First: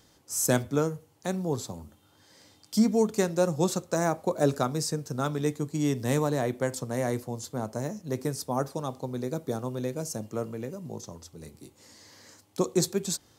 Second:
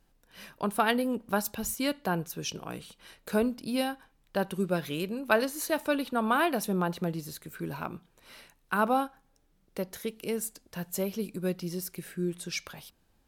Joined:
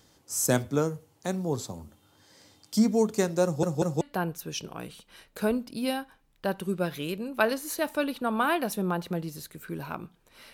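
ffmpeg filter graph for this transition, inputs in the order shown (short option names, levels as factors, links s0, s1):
-filter_complex "[0:a]apad=whole_dur=10.53,atrim=end=10.53,asplit=3[s0][s1][s2];[s0]atrim=end=3.632[s3];[s1]atrim=start=3.438:end=3.632[s4];[s2]atrim=start=3.438:end=3.632[s5];[1:a]atrim=start=1.918:end=8.44[s6];[s3][s4]acrossfade=d=0.004:c1=hsin:c2=hsin[s7];[s7][s5]acrossfade=d=0.004:c1=hsin:c2=hsin[s8];[s8][s6]acrossfade=d=0.004:c1=hsin:c2=hsin"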